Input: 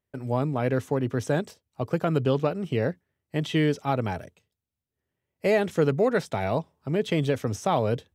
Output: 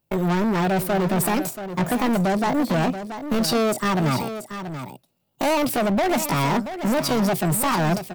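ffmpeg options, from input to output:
-filter_complex "[0:a]aemphasis=mode=production:type=75fm,agate=range=-7dB:threshold=-49dB:ratio=16:detection=peak,tiltshelf=f=750:g=4,asplit=2[a][b];[b]alimiter=limit=-18.5dB:level=0:latency=1:release=472,volume=1.5dB[c];[a][c]amix=inputs=2:normalize=0,acompressor=threshold=-16dB:ratio=6,volume=26dB,asoftclip=hard,volume=-26dB,asetrate=64194,aresample=44100,atempo=0.686977,aecho=1:1:681:0.299,volume=7.5dB"

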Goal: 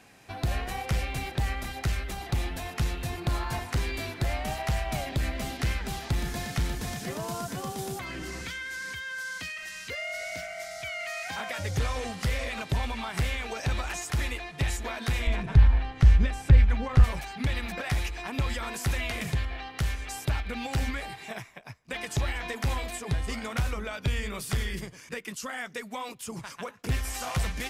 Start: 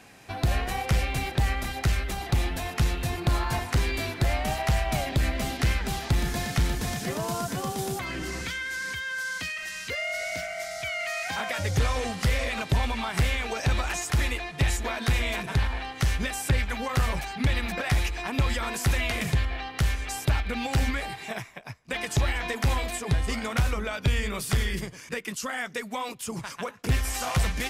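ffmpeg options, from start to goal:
-filter_complex "[0:a]asettb=1/sr,asplit=3[a][b][c];[a]atrim=end=15.274[d];[b]atrim=start=15.27:end=17.04,asetpts=PTS-STARTPTS,afade=t=in:d=0.004:c=qsin,afade=t=out:st=1.766:d=0.004:c=qsin,aemphasis=mode=reproduction:type=bsi[e];[c]atrim=start=17.036[f];[d][e]acrossfade=d=0.004:c1=hsin:c2=qsin[g];[g][f]acrossfade=d=0.004:c1=qsin:c2=hsin,volume=-4dB"

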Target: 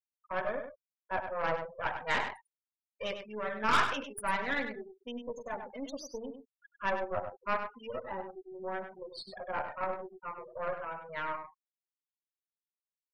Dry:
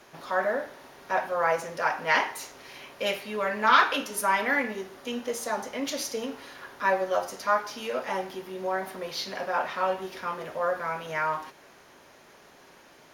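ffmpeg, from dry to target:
-filter_complex "[0:a]afftfilt=real='re*gte(hypot(re,im),0.0631)':imag='im*gte(hypot(re,im),0.0631)':win_size=1024:overlap=0.75,aeval=exprs='0.447*(cos(1*acos(clip(val(0)/0.447,-1,1)))-cos(1*PI/2))+0.0631*(cos(6*acos(clip(val(0)/0.447,-1,1)))-cos(6*PI/2))':c=same,asplit=2[a][b];[b]adelay=99.13,volume=-8dB,highshelf=f=4k:g=-2.23[c];[a][c]amix=inputs=2:normalize=0,volume=-8.5dB"

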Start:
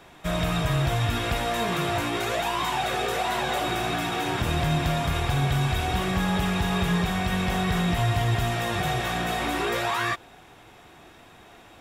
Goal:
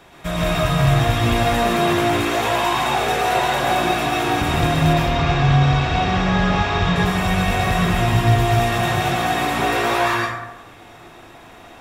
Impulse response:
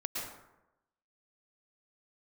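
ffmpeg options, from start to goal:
-filter_complex "[0:a]asettb=1/sr,asplit=3[a][b][c];[a]atrim=end=4.934[d];[b]atrim=start=4.93:end=6.96,asetpts=PTS-STARTPTS,afade=t=in:d=0.004:c=qsin,afade=t=out:st=2.026:d=0.004:c=qsin,lowpass=f=6k:w=0.5412,lowpass=f=6k:w=1.3066[e];[c]atrim=start=6.956[f];[d][e]acrossfade=d=0.004:c1=hsin:c2=qsin[g];[g][f]acrossfade=d=0.004:c1=qsin:c2=hsin[h];[1:a]atrim=start_sample=2205[i];[h][i]afir=irnorm=-1:irlink=0,volume=4.5dB"

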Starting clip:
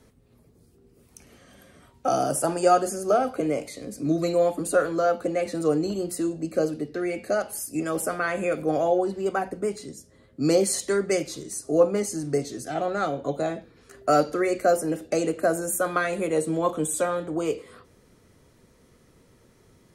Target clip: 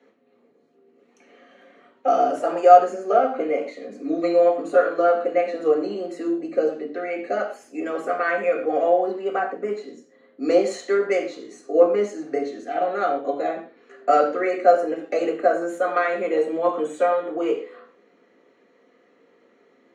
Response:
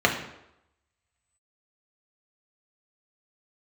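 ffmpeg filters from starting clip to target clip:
-filter_complex "[0:a]highpass=f=280:w=0.5412,highpass=f=280:w=1.3066,adynamicsmooth=sensitivity=1.5:basefreq=5k[a];[1:a]atrim=start_sample=2205,atrim=end_sample=6174[b];[a][b]afir=irnorm=-1:irlink=0,volume=-14dB"

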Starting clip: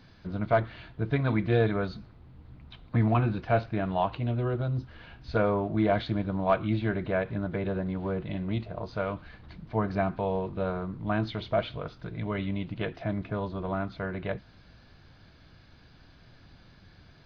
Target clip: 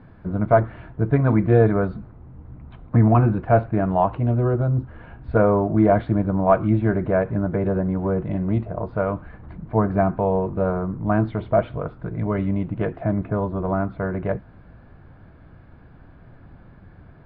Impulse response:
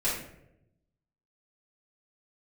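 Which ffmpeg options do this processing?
-af "lowpass=1.5k,aemphasis=mode=reproduction:type=75fm,volume=8dB"

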